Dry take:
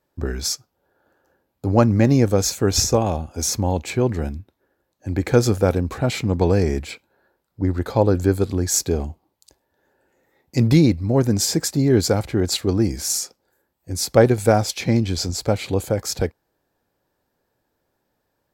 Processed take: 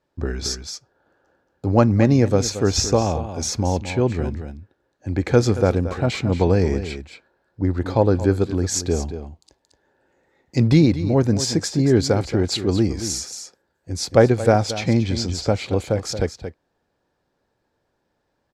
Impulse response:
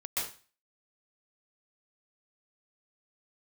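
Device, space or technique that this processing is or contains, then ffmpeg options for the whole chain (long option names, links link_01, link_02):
ducked delay: -filter_complex "[0:a]asplit=3[link_01][link_02][link_03];[link_02]adelay=226,volume=-5.5dB[link_04];[link_03]apad=whole_len=827283[link_05];[link_04][link_05]sidechaincompress=threshold=-20dB:ratio=4:attack=7.4:release=963[link_06];[link_01][link_06]amix=inputs=2:normalize=0,lowpass=6300"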